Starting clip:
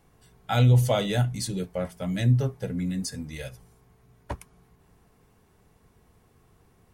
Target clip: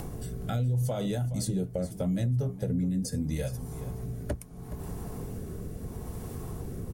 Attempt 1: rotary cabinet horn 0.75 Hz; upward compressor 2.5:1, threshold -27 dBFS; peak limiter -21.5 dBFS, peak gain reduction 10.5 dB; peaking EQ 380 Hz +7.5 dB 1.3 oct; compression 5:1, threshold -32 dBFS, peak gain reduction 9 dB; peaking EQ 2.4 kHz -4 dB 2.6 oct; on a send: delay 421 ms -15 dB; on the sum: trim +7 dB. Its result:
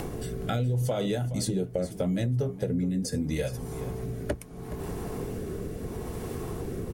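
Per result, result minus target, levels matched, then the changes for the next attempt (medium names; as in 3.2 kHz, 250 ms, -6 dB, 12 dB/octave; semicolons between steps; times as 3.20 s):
2 kHz band +5.0 dB; 500 Hz band +4.0 dB
change: second peaking EQ 2.4 kHz -12.5 dB 2.6 oct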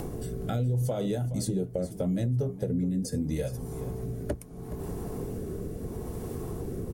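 500 Hz band +3.0 dB
remove: first peaking EQ 380 Hz +7.5 dB 1.3 oct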